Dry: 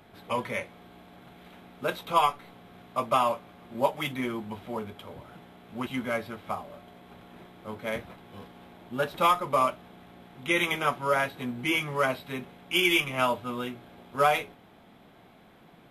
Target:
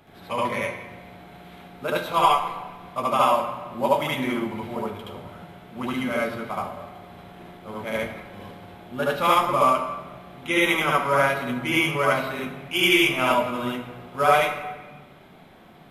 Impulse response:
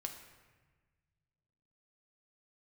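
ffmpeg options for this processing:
-filter_complex "[0:a]asplit=2[s0][s1];[1:a]atrim=start_sample=2205,adelay=73[s2];[s1][s2]afir=irnorm=-1:irlink=0,volume=2[s3];[s0][s3]amix=inputs=2:normalize=0"

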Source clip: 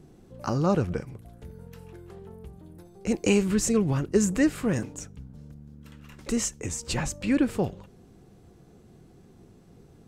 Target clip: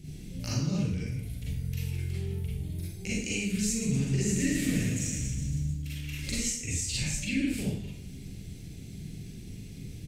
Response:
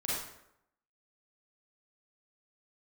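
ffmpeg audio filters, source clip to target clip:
-filter_complex "[0:a]firequalizer=gain_entry='entry(100,0);entry(420,-14);entry(1100,-24);entry(2200,3)':delay=0.05:min_phase=1,acompressor=threshold=0.00708:ratio=5,asettb=1/sr,asplit=3[s0][s1][s2];[s0]atrim=end=3.664[s3];[s1]atrim=start=3.66:end=5.67,asetpts=PTS-STARTPTS,afade=t=in:d=0.004:c=qsin,afade=t=out:st=2.006:d=0.004:c=qsin,aecho=1:1:110|231|364.1|510.5|671.6:0.631|0.398|0.251|0.158|0.1,atrim=end_sample=88641[s4];[s2]atrim=start=5.666[s5];[s3][s4]acrossfade=d=0.004:c1=hsin:c2=qsin[s6];[s6][s5]acrossfade=d=0.004:c1=qsin:c2=hsin[s7];[1:a]atrim=start_sample=2205[s8];[s7][s8]afir=irnorm=-1:irlink=0,volume=2.66"

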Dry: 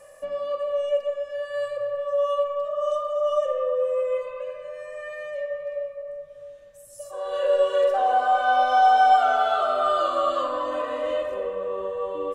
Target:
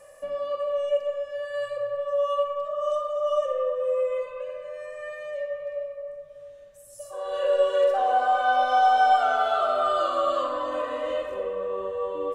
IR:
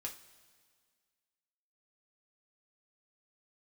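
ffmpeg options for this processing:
-filter_complex "[0:a]asplit=2[s0][s1];[1:a]atrim=start_sample=2205,asetrate=74970,aresample=44100,adelay=60[s2];[s1][s2]afir=irnorm=-1:irlink=0,volume=0.631[s3];[s0][s3]amix=inputs=2:normalize=0,volume=0.841"

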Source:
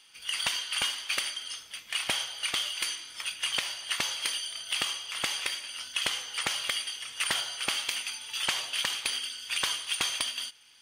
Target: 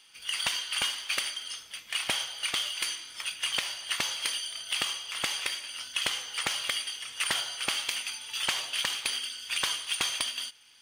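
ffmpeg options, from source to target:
-af "acrusher=bits=7:mode=log:mix=0:aa=0.000001"

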